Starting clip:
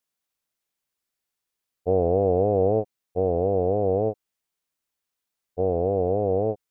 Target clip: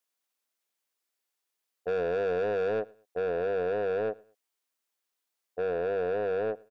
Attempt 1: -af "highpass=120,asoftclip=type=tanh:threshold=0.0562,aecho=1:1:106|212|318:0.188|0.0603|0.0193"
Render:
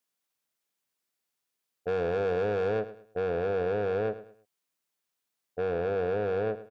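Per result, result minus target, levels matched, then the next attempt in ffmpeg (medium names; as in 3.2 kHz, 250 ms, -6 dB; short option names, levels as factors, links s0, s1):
125 Hz band +7.5 dB; echo-to-direct +10 dB
-af "highpass=300,asoftclip=type=tanh:threshold=0.0562,aecho=1:1:106|212|318:0.188|0.0603|0.0193"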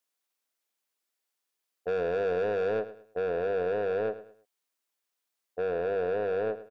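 echo-to-direct +10 dB
-af "highpass=300,asoftclip=type=tanh:threshold=0.0562,aecho=1:1:106|212:0.0596|0.0191"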